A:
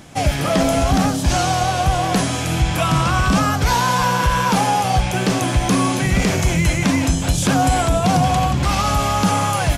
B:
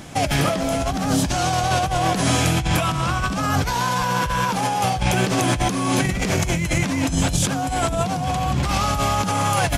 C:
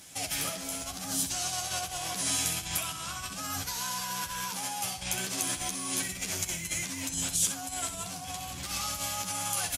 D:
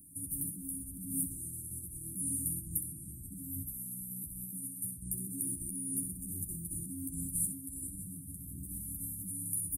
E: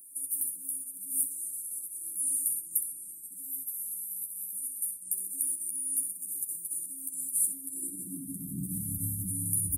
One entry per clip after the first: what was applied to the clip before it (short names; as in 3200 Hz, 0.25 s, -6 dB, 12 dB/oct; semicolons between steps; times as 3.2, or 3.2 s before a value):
negative-ratio compressor -21 dBFS, ratio -1
pre-emphasis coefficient 0.9; added harmonics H 4 -40 dB, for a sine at -8.5 dBFS; early reflections 11 ms -4 dB, 64 ms -8.5 dB; gain -3.5 dB
Chebyshev band-stop 320–9200 Hz, order 5
high-pass sweep 890 Hz -> 72 Hz, 7.21–9.31; gain +6 dB